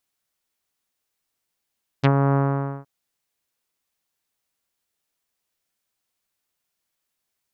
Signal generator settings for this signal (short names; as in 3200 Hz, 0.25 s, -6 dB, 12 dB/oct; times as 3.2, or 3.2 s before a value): synth note saw C#3 24 dB/oct, low-pass 1300 Hz, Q 1.2, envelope 2.5 oct, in 0.05 s, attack 20 ms, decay 0.07 s, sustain -4.5 dB, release 0.50 s, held 0.32 s